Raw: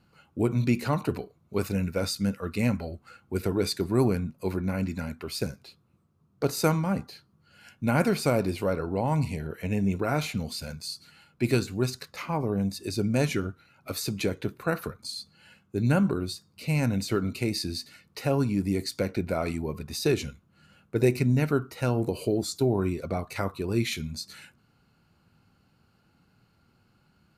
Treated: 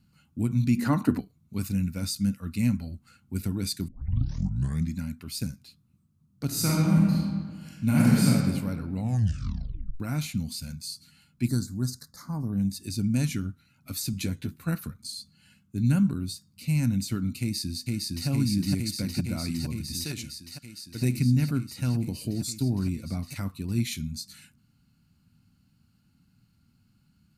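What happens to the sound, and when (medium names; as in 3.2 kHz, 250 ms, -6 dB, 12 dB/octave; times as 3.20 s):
0.78–1.20 s: time-frequency box 200–2100 Hz +11 dB
3.88 s: tape start 1.09 s
6.46–8.29 s: reverb throw, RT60 1.7 s, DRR -5 dB
8.94 s: tape stop 1.06 s
11.48–12.53 s: Chebyshev band-stop 1.5–4.7 kHz
14.12–14.75 s: doubling 12 ms -5 dB
17.40–18.28 s: echo throw 460 ms, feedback 85%, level -1 dB
20.04–21.02 s: bass shelf 420 Hz -10 dB
whole clip: FFT filter 260 Hz 0 dB, 410 Hz -19 dB, 8.5 kHz +1 dB; trim +1.5 dB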